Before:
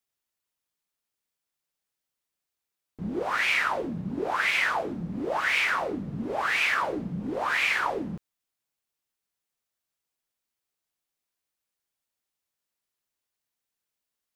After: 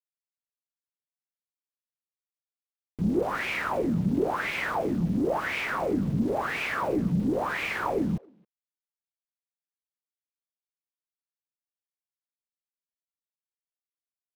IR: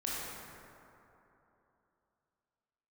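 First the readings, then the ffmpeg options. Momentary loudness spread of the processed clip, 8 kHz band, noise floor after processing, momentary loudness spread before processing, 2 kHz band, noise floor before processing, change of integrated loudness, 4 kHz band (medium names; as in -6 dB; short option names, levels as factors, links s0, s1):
2 LU, -5.5 dB, under -85 dBFS, 10 LU, -6.0 dB, under -85 dBFS, -1.5 dB, -7.5 dB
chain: -filter_complex "[0:a]tiltshelf=f=780:g=8.5,aeval=exprs='val(0)*gte(abs(val(0)),0.0075)':c=same,asplit=2[s0][s1];[s1]adelay=270,highpass=300,lowpass=3400,asoftclip=type=hard:threshold=0.0708,volume=0.0562[s2];[s0][s2]amix=inputs=2:normalize=0"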